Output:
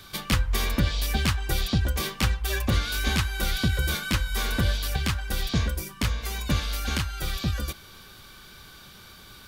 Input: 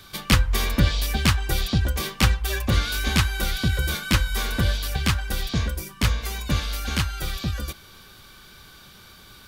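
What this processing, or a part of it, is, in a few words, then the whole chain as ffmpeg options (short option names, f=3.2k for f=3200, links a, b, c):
clipper into limiter: -af "asoftclip=type=hard:threshold=-7.5dB,alimiter=limit=-13dB:level=0:latency=1:release=380"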